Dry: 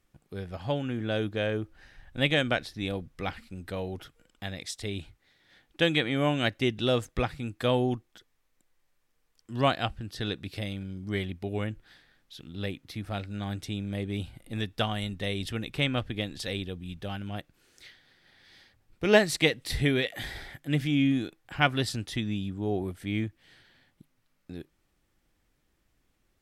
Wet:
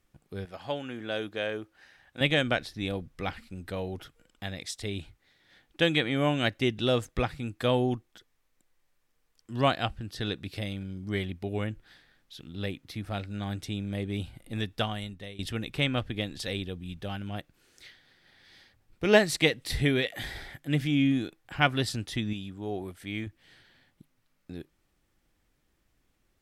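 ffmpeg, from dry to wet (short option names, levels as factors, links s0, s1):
-filter_complex "[0:a]asettb=1/sr,asplit=3[s0][s1][s2];[s0]atrim=end=0.454[s3];[s1]atrim=start=0.45:end=2.21,asetpts=PTS-STARTPTS,afade=t=in:d=0.004:c=qsin,afade=t=out:st=1.756:d=0.004:c=qsin,highpass=f=470:p=1[s4];[s2]atrim=start=2.206[s5];[s3][s4]acrossfade=d=0.004:c1=hsin:c2=qsin[s6];[s6][s5]acrossfade=d=0.004:c1=qsin:c2=hsin,asettb=1/sr,asplit=3[s7][s8][s9];[s7]atrim=end=22.334[s10];[s8]atrim=start=22.33:end=23.27,asetpts=PTS-STARTPTS,afade=t=in:d=0.004:c=qsin,afade=t=out:st=0.936:d=0.004:c=qsin,lowshelf=f=460:g=-7.5[s11];[s9]atrim=start=23.266[s12];[s10][s11]acrossfade=d=0.004:c1=hsin:c2=qsin[s13];[s13][s12]acrossfade=d=0.004:c1=qsin:c2=hsin,asplit=2[s14][s15];[s14]atrim=end=15.39,asetpts=PTS-STARTPTS,afade=t=out:st=14.73:d=0.66:silence=0.133352[s16];[s15]atrim=start=15.39,asetpts=PTS-STARTPTS,afade=t=in:d=0.004:c=hsin:silence=0.133352[s17];[s16][s17]concat=n=2:v=0:a=1"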